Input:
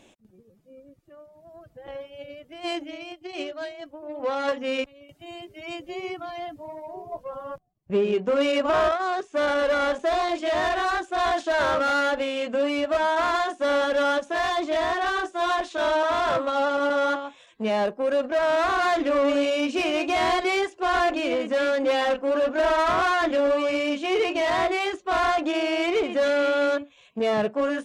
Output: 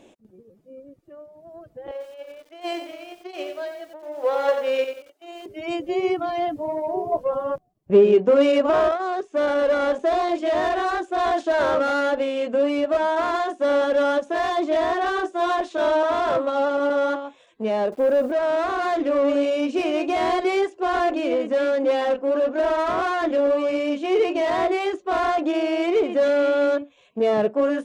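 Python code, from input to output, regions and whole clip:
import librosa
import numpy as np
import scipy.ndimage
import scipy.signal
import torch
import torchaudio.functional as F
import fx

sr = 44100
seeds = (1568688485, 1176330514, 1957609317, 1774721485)

y = fx.chain(x, sr, fx.law_mismatch(coded='A'),
    fx.highpass(hz=390.0, slope=24),
    fx.echo_crushed(ms=91, feedback_pct=35, bits=8, wet_db=-7), at=(1.91, 5.46))
y = fx.chain(y, sr, fx.leveller(passes=2),
    fx.high_shelf(hz=2400.0, db=-10.0),
    fx.quant_dither(seeds[0], bits=8, dither='none'), at=(17.92, 18.32))
y = fx.peak_eq(y, sr, hz=410.0, db=9.0, octaves=2.2)
y = fx.rider(y, sr, range_db=10, speed_s=2.0)
y = F.gain(torch.from_numpy(y), -4.5).numpy()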